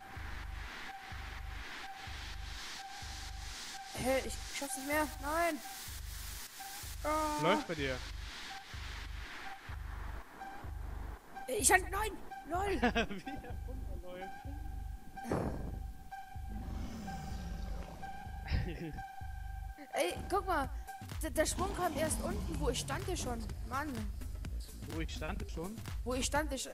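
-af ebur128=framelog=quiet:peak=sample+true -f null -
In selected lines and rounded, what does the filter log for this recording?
Integrated loudness:
  I:         -38.9 LUFS
  Threshold: -48.9 LUFS
Loudness range:
  LRA:         9.0 LU
  Threshold: -58.7 LUFS
  LRA low:   -43.9 LUFS
  LRA high:  -34.9 LUFS
Sample peak:
  Peak:      -12.9 dBFS
True peak:
  Peak:      -12.5 dBFS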